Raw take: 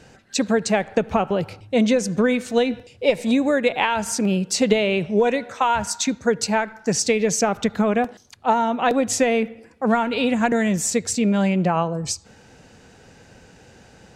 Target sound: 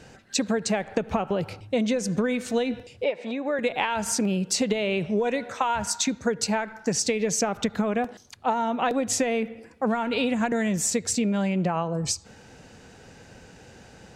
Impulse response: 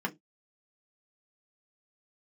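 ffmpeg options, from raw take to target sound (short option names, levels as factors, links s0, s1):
-filter_complex "[0:a]acompressor=threshold=0.0891:ratio=6,asettb=1/sr,asplit=3[s0][s1][s2];[s0]atrim=end=3.044[s3];[s1]atrim=start=3.04:end=3.59,asetpts=PTS-STARTPTS,afade=t=in:d=0.004:c=qsin,afade=t=out:st=0.546:d=0.004:c=qsin,highpass=380,lowpass=2800[s4];[s2]atrim=start=3.586[s5];[s3][s4]acrossfade=d=0.004:c1=hsin:c2=qsin[s6];[s6][s5]acrossfade=d=0.004:c1=qsin:c2=hsin"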